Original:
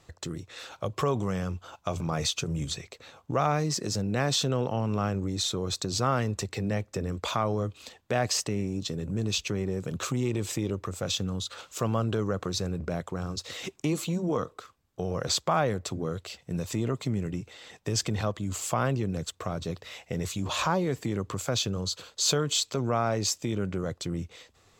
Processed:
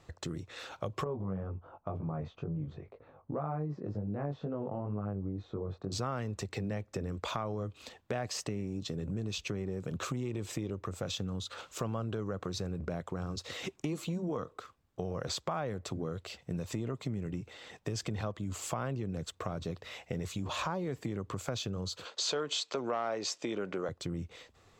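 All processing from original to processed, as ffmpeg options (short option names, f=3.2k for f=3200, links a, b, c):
-filter_complex "[0:a]asettb=1/sr,asplit=3[a][b][c];[a]atrim=end=1.044[d];[b]atrim=start=1.04:end=5.92,asetpts=PTS-STARTPTS,afade=t=in:d=0.004:c=qsin,afade=t=out:st=4.876:d=0.004:c=qsin,lowpass=1k,flanger=delay=19:depth=2.1:speed=2[e];[c]atrim=start=5.916[f];[d][e]acrossfade=d=0.004:c1=hsin:c2=qsin[g];[g][f]acrossfade=d=0.004:c1=qsin:c2=hsin,asettb=1/sr,asplit=3[h][i][j];[h]atrim=end=22.054[k];[i]atrim=start=22.05:end=23.89,asetpts=PTS-STARTPTS,afade=t=in:d=0.004:c=qsin,afade=t=out:st=1.836:d=0.004:c=qsin,acontrast=83,asoftclip=type=hard:threshold=-11dB,highpass=370,lowpass=6.1k[l];[j]atrim=start=23.886[m];[k][l]acrossfade=d=0.004:c1=hsin:c2=qsin[n];[n][m]acrossfade=d=0.004:c1=qsin:c2=hsin,highshelf=f=3.7k:g=-7.5,acompressor=threshold=-34dB:ratio=3"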